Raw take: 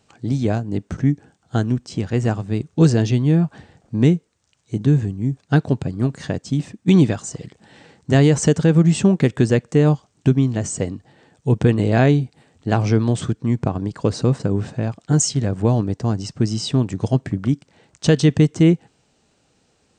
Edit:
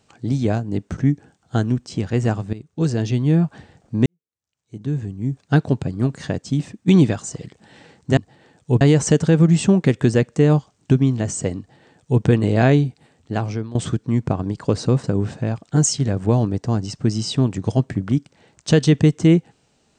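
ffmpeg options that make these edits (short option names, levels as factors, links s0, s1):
-filter_complex "[0:a]asplit=6[s0][s1][s2][s3][s4][s5];[s0]atrim=end=2.53,asetpts=PTS-STARTPTS,afade=t=out:st=2.526:d=0.004:c=hsin:silence=0.16788[s6];[s1]atrim=start=2.53:end=4.06,asetpts=PTS-STARTPTS,afade=t=in:d=0.85:silence=0.16788,afade=t=out:st=1.526:d=0.004:c=hsin[s7];[s2]atrim=start=4.06:end=8.172,asetpts=PTS-STARTPTS,afade=t=in:d=1.35:c=qua[s8];[s3]atrim=start=10.938:end=11.582[s9];[s4]atrim=start=8.168:end=13.11,asetpts=PTS-STARTPTS,afade=t=out:st=3.932:d=1.01:c=qsin:silence=0.125893[s10];[s5]atrim=start=13.11,asetpts=PTS-STARTPTS,afade=t=in:d=0.004:c=hsin:silence=0.125893[s11];[s6][s7][s8]concat=n=3:v=0:a=1[s12];[s12][s9]acrossfade=d=0.004:c1=hsin:c2=hsin[s13];[s10][s11]concat=n=2:v=0:a=1[s14];[s13][s14]acrossfade=d=0.004:c1=hsin:c2=hsin"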